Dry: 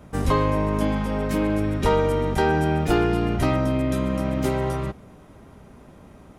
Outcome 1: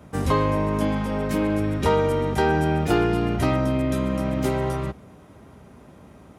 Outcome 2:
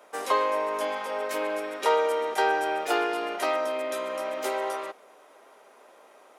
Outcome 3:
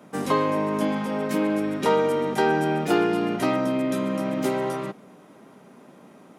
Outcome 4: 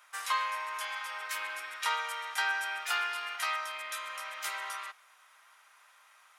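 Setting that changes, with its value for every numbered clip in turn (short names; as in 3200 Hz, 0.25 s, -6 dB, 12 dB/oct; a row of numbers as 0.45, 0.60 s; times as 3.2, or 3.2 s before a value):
HPF, cutoff: 56, 470, 180, 1200 Hz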